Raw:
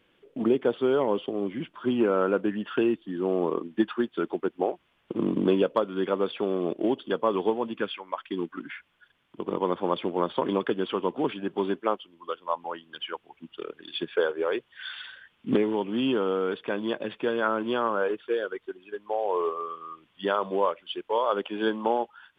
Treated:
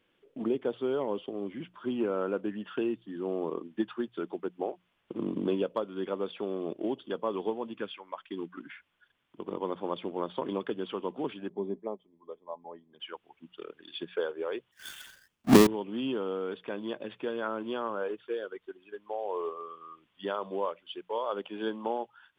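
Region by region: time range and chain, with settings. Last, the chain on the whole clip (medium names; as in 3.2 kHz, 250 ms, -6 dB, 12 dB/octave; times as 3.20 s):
11.49–13.00 s: boxcar filter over 31 samples + comb 4.8 ms, depth 31%
14.71–15.67 s: square wave that keeps the level + bass shelf 240 Hz +8 dB + three bands expanded up and down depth 70%
whole clip: dynamic bell 1.6 kHz, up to -3 dB, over -39 dBFS, Q 1.1; hum notches 60/120/180 Hz; trim -6.5 dB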